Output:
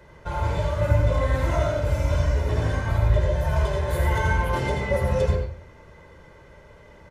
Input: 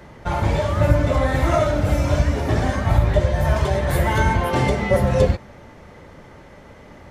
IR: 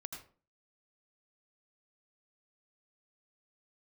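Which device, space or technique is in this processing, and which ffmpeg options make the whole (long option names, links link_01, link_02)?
microphone above a desk: -filter_complex "[0:a]aecho=1:1:2:0.53[link_01];[1:a]atrim=start_sample=2205[link_02];[link_01][link_02]afir=irnorm=-1:irlink=0,volume=-4dB"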